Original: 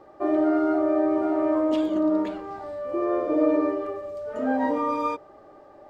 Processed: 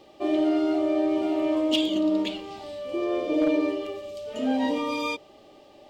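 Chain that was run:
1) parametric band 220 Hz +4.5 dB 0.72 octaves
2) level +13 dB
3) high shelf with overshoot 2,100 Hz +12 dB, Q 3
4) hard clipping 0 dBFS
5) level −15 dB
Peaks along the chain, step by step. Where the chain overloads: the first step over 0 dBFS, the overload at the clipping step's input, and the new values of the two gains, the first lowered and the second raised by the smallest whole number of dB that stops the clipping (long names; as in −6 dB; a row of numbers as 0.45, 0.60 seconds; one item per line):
−8.5, +4.5, +4.0, 0.0, −15.0 dBFS
step 2, 4.0 dB
step 2 +9 dB, step 5 −11 dB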